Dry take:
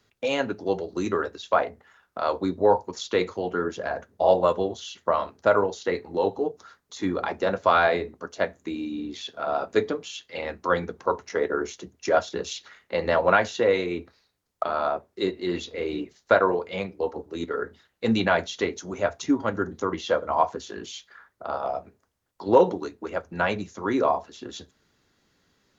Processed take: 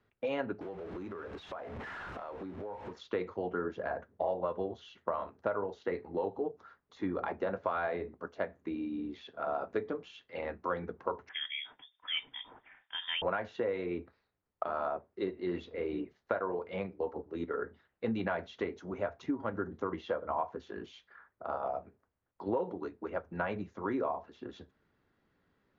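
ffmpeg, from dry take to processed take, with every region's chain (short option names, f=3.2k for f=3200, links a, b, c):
-filter_complex "[0:a]asettb=1/sr,asplit=3[a][b][c];[a]atrim=end=0.614[d];[b]atrim=start=0.61:end=2.93,asetpts=PTS-STARTPTS,afade=t=in:d=0.004:c=qsin,afade=t=out:st=2.316:d=0.004:c=qsin,aeval=exprs='val(0)+0.5*0.0316*sgn(val(0))':c=same,bandreject=f=4.6k:w=25,acompressor=threshold=-34dB:ratio=6:attack=3.2:release=140:knee=1:detection=peak[e];[c]atrim=start=2.926[f];[d][e]acrossfade=d=0.004:c1=hsin:c2=qsin[g];[g][f]acrossfade=d=0.004:c1=qsin:c2=hsin,asettb=1/sr,asplit=3[h][i][j];[h]atrim=end=11.294[k];[i]atrim=start=11.29:end=13.22,asetpts=PTS-STARTPTS,afade=t=in:d=0.004:c=qsin,afade=t=out:st=1.926:d=0.004:c=qsin,acrossover=split=2700[l][m];[m]acompressor=threshold=-47dB:ratio=4:attack=1:release=60[n];[l][n]amix=inputs=2:normalize=0,lowpass=f=3.1k:t=q:w=0.5098,lowpass=f=3.1k:t=q:w=0.6013,lowpass=f=3.1k:t=q:w=0.9,lowpass=f=3.1k:t=q:w=2.563,afreqshift=-3700[o];[j]atrim=start=13.216[p];[k][o]acrossfade=d=0.004:c1=hsin:c2=qsin[q];[q][p]acrossfade=d=0.004:c1=qsin:c2=hsin,lowpass=2k,acompressor=threshold=-24dB:ratio=6,volume=-5.5dB"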